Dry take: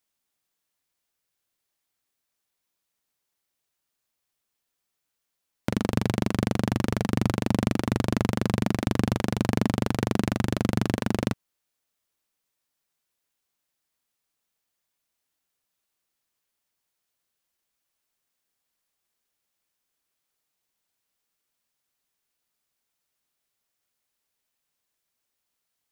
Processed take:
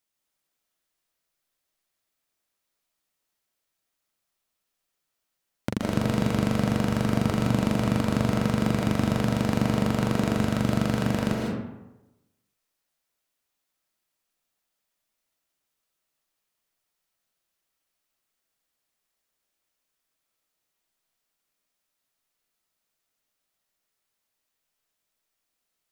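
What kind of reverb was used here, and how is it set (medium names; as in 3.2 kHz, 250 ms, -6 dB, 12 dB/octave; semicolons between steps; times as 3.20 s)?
algorithmic reverb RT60 1 s, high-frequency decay 0.55×, pre-delay 110 ms, DRR -1.5 dB; trim -2.5 dB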